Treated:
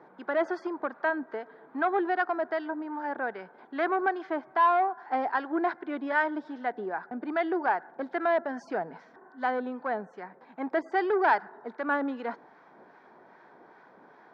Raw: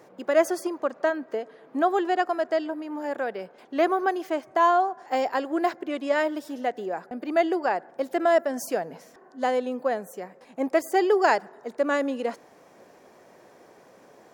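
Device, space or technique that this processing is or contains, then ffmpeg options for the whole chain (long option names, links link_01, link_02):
guitar amplifier with harmonic tremolo: -filter_complex "[0:a]acrossover=split=950[link_01][link_02];[link_01]aeval=exprs='val(0)*(1-0.5/2+0.5/2*cos(2*PI*2.5*n/s))':channel_layout=same[link_03];[link_02]aeval=exprs='val(0)*(1-0.5/2-0.5/2*cos(2*PI*2.5*n/s))':channel_layout=same[link_04];[link_03][link_04]amix=inputs=2:normalize=0,asoftclip=type=tanh:threshold=-19.5dB,highpass=87,equalizer=frequency=110:width_type=q:width=4:gain=-10,equalizer=frequency=540:width_type=q:width=4:gain=-7,equalizer=frequency=910:width_type=q:width=4:gain=7,equalizer=frequency=1500:width_type=q:width=4:gain=8,equalizer=frequency=2800:width_type=q:width=4:gain=-10,lowpass=frequency=3600:width=0.5412,lowpass=frequency=3600:width=1.3066"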